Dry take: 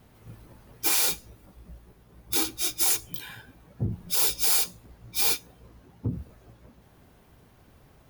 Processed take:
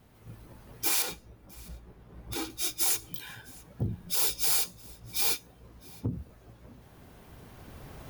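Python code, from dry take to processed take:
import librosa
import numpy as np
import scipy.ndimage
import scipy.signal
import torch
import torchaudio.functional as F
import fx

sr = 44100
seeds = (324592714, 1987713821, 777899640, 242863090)

p1 = fx.recorder_agc(x, sr, target_db=-18.5, rise_db_per_s=7.4, max_gain_db=30)
p2 = fx.high_shelf(p1, sr, hz=3800.0, db=-11.0, at=(1.02, 2.5))
p3 = p2 + fx.echo_single(p2, sr, ms=661, db=-24.0, dry=0)
y = F.gain(torch.from_numpy(p3), -3.5).numpy()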